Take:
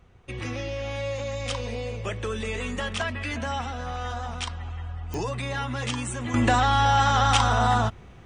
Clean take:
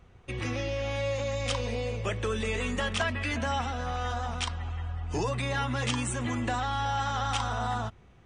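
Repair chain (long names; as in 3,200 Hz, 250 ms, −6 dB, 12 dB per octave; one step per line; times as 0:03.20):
click removal
level correction −9.5 dB, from 0:06.34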